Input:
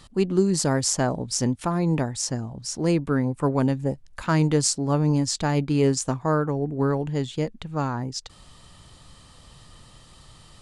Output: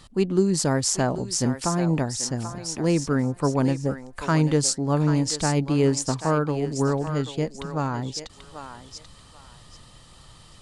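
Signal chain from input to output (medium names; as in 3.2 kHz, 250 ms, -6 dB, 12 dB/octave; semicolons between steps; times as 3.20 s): thinning echo 787 ms, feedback 27%, high-pass 650 Hz, level -8 dB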